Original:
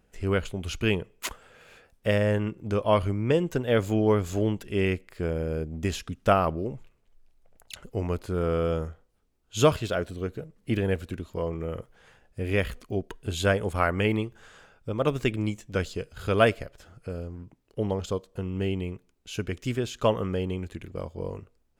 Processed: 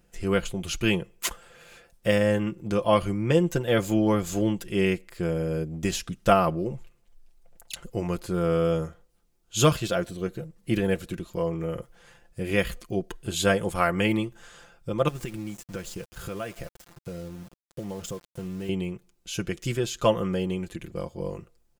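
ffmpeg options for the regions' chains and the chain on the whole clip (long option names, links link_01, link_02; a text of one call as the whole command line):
ffmpeg -i in.wav -filter_complex "[0:a]asettb=1/sr,asplit=3[link_01][link_02][link_03];[link_01]atrim=end=15.084[link_04];[link_02]atrim=start=15.08:end=18.69,asetpts=PTS-STARTPTS,afade=type=in:duration=0.004:curve=qsin,afade=type=out:start_time=3.606:duration=0.004:curve=qsin,equalizer=frequency=4100:width=2:gain=-7,acompressor=threshold=-31dB:ratio=10:attack=3.2:release=140:knee=1:detection=peak,aeval=exprs='val(0)*gte(abs(val(0)),0.00473)':channel_layout=same[link_05];[link_03]atrim=start=18.686[link_06];[link_04][link_05]acrossfade=duration=0.004:curve1=hsin:curve2=qsin[link_07];[link_07][link_06]acrossfade=duration=0.004:curve1=qsin:curve2=hsin,bass=frequency=250:gain=1,treble=frequency=4000:gain=6,aecho=1:1:5.8:0.61" out.wav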